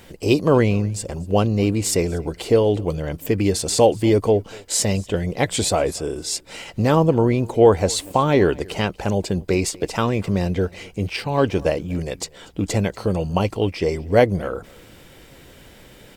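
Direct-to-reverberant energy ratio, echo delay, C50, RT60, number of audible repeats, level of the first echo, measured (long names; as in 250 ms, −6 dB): no reverb audible, 239 ms, no reverb audible, no reverb audible, 1, −24.0 dB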